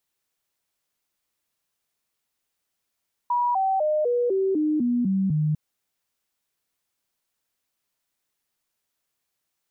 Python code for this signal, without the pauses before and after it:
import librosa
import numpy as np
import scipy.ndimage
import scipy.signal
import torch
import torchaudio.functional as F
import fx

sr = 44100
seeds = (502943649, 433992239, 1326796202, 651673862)

y = fx.stepped_sweep(sr, from_hz=969.0, direction='down', per_octave=3, tones=9, dwell_s=0.25, gap_s=0.0, level_db=-19.5)